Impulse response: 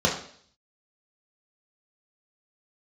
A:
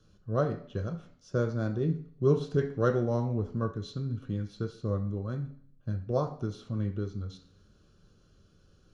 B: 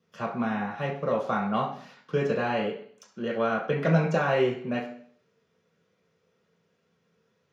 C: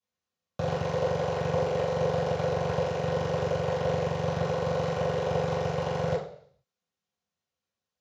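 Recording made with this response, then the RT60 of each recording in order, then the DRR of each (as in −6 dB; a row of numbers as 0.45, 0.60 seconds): B; 0.55, 0.55, 0.55 seconds; 4.5, −2.5, −11.0 decibels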